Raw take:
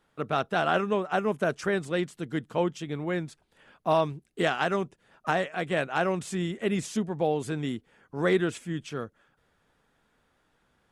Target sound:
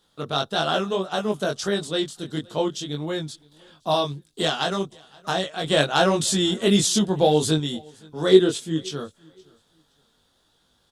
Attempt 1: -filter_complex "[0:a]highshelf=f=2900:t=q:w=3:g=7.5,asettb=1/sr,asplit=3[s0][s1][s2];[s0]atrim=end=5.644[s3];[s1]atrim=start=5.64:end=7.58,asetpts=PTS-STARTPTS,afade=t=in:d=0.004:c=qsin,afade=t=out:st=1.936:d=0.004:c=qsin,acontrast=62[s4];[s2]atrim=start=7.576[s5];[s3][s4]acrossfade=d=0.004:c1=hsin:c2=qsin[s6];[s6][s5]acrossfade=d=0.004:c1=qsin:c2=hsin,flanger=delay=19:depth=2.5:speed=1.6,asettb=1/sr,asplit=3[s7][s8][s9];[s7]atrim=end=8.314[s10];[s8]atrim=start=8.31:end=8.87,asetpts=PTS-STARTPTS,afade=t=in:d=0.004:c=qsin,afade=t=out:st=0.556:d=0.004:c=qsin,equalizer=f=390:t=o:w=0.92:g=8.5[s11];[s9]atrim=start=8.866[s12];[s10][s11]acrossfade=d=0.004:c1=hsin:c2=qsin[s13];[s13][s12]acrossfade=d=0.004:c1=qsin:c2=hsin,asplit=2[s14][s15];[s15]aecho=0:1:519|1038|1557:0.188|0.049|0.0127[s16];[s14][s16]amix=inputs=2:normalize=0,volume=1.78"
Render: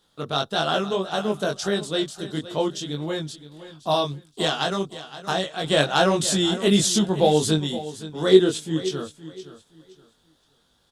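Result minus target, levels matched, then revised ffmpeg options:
echo-to-direct +12 dB
-filter_complex "[0:a]highshelf=f=2900:t=q:w=3:g=7.5,asettb=1/sr,asplit=3[s0][s1][s2];[s0]atrim=end=5.644[s3];[s1]atrim=start=5.64:end=7.58,asetpts=PTS-STARTPTS,afade=t=in:d=0.004:c=qsin,afade=t=out:st=1.936:d=0.004:c=qsin,acontrast=62[s4];[s2]atrim=start=7.576[s5];[s3][s4]acrossfade=d=0.004:c1=hsin:c2=qsin[s6];[s6][s5]acrossfade=d=0.004:c1=qsin:c2=hsin,flanger=delay=19:depth=2.5:speed=1.6,asettb=1/sr,asplit=3[s7][s8][s9];[s7]atrim=end=8.314[s10];[s8]atrim=start=8.31:end=8.87,asetpts=PTS-STARTPTS,afade=t=in:d=0.004:c=qsin,afade=t=out:st=0.556:d=0.004:c=qsin,equalizer=f=390:t=o:w=0.92:g=8.5[s11];[s9]atrim=start=8.866[s12];[s10][s11]acrossfade=d=0.004:c1=hsin:c2=qsin[s13];[s13][s12]acrossfade=d=0.004:c1=qsin:c2=hsin,asplit=2[s14][s15];[s15]aecho=0:1:519|1038:0.0473|0.0123[s16];[s14][s16]amix=inputs=2:normalize=0,volume=1.78"

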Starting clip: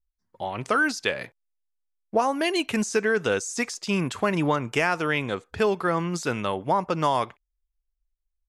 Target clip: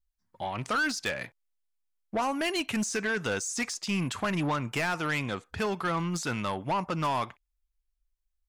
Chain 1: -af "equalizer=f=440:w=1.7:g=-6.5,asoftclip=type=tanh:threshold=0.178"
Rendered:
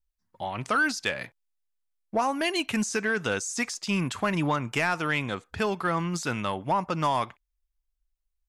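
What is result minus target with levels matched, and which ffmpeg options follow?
saturation: distortion -10 dB
-af "equalizer=f=440:w=1.7:g=-6.5,asoftclip=type=tanh:threshold=0.0668"

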